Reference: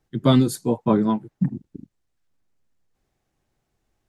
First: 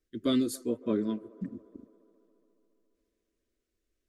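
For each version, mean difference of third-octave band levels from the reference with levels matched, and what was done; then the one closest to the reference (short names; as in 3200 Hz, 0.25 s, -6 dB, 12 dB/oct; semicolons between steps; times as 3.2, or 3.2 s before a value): 4.0 dB: fixed phaser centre 350 Hz, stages 4; band-limited delay 0.139 s, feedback 76%, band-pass 700 Hz, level -20 dB; gain -7 dB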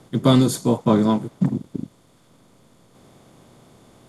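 6.0 dB: per-bin compression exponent 0.6; dynamic EQ 6300 Hz, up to +5 dB, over -49 dBFS, Q 1.3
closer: first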